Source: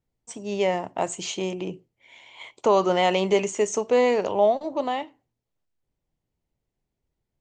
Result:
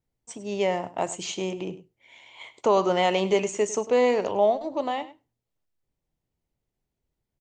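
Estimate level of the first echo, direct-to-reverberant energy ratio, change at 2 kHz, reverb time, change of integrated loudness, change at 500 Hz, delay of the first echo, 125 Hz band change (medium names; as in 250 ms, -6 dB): -16.5 dB, no reverb, -1.5 dB, no reverb, -1.5 dB, -1.5 dB, 101 ms, no reading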